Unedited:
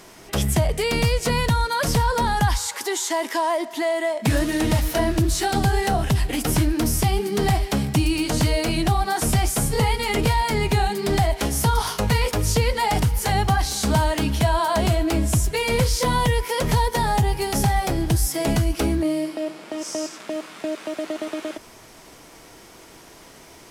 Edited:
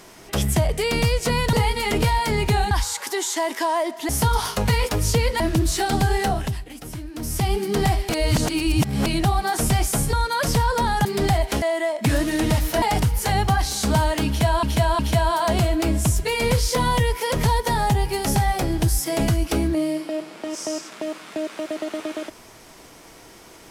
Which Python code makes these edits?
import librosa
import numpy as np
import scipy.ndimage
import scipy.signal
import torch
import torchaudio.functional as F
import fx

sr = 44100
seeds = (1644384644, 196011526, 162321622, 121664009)

y = fx.edit(x, sr, fx.swap(start_s=1.53, length_s=0.92, other_s=9.76, other_length_s=1.18),
    fx.swap(start_s=3.83, length_s=1.2, other_s=11.51, other_length_s=1.31),
    fx.fade_down_up(start_s=5.88, length_s=1.28, db=-14.0, fade_s=0.4),
    fx.reverse_span(start_s=7.72, length_s=0.97),
    fx.repeat(start_s=14.27, length_s=0.36, count=3), tone=tone)